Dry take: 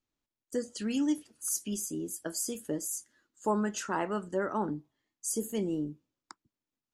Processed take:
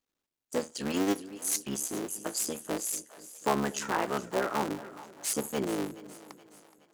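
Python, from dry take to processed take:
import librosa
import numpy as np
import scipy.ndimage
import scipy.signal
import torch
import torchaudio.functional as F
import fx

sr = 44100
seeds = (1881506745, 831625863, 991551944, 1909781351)

p1 = fx.cycle_switch(x, sr, every=3, mode='muted')
p2 = fx.low_shelf(p1, sr, hz=130.0, db=-12.0)
p3 = p2 + fx.echo_split(p2, sr, split_hz=550.0, low_ms=240, high_ms=422, feedback_pct=52, wet_db=-16.0, dry=0)
y = p3 * 10.0 ** (4.0 / 20.0)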